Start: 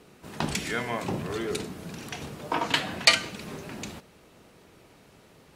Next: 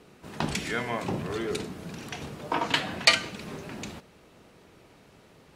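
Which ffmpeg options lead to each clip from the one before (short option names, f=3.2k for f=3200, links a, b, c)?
-af "highshelf=f=8.1k:g=-6"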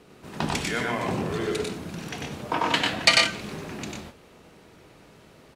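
-af "aecho=1:1:96|120:0.708|0.531,volume=1dB"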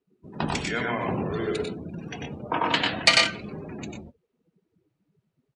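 -af "afftdn=nr=32:nf=-37"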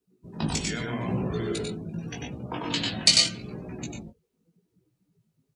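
-filter_complex "[0:a]bass=f=250:g=6,treble=f=4k:g=11,flanger=delay=16:depth=2.8:speed=0.82,acrossover=split=460|3000[a][b][c];[b]acompressor=threshold=-36dB:ratio=6[d];[a][d][c]amix=inputs=3:normalize=0"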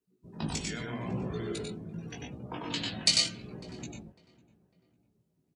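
-filter_complex "[0:a]asplit=2[a][b];[b]adelay=551,lowpass=f=1.7k:p=1,volume=-21dB,asplit=2[c][d];[d]adelay=551,lowpass=f=1.7k:p=1,volume=0.46,asplit=2[e][f];[f]adelay=551,lowpass=f=1.7k:p=1,volume=0.46[g];[a][c][e][g]amix=inputs=4:normalize=0,volume=-6dB"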